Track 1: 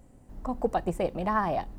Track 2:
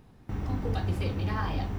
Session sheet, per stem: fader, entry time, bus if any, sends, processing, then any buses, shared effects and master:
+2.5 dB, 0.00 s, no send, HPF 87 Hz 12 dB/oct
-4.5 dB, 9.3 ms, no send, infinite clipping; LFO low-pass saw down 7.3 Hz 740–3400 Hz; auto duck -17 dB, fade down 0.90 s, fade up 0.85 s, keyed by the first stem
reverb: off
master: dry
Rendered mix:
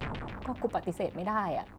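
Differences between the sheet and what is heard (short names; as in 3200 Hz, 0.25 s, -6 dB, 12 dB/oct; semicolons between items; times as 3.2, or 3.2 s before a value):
stem 1 +2.5 dB -> -4.0 dB; stem 2: polarity flipped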